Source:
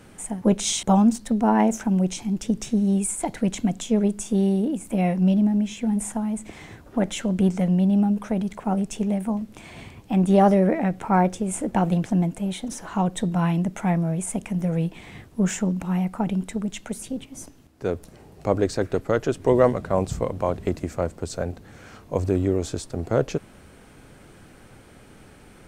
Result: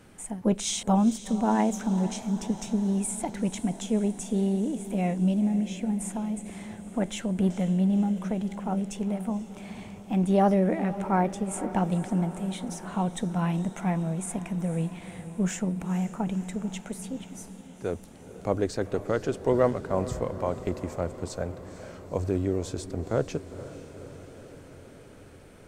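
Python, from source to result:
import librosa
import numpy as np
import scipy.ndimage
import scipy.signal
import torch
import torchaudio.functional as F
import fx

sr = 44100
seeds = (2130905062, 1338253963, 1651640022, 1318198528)

y = fx.echo_diffused(x, sr, ms=483, feedback_pct=67, wet_db=-14.0)
y = y * librosa.db_to_amplitude(-5.0)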